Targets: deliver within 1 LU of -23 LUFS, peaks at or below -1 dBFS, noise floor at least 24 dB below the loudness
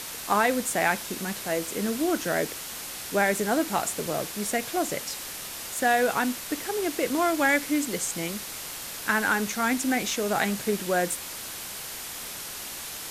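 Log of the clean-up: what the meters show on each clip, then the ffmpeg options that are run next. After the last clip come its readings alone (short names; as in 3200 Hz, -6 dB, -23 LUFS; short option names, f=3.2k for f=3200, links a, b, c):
noise floor -38 dBFS; noise floor target -51 dBFS; loudness -27.0 LUFS; peak -9.0 dBFS; loudness target -23.0 LUFS
-> -af "afftdn=nr=13:nf=-38"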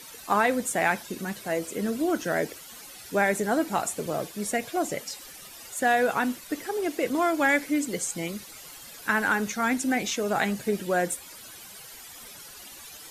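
noise floor -45 dBFS; noise floor target -51 dBFS
-> -af "afftdn=nr=6:nf=-45"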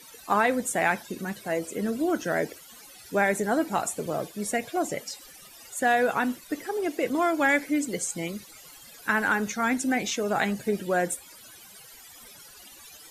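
noise floor -49 dBFS; noise floor target -51 dBFS
-> -af "afftdn=nr=6:nf=-49"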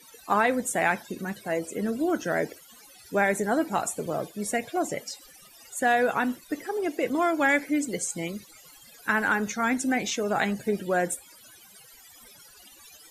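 noise floor -53 dBFS; loudness -27.0 LUFS; peak -9.5 dBFS; loudness target -23.0 LUFS
-> -af "volume=4dB"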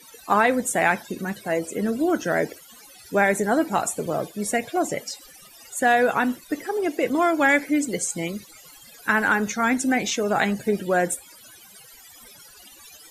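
loudness -23.0 LUFS; peak -5.5 dBFS; noise floor -49 dBFS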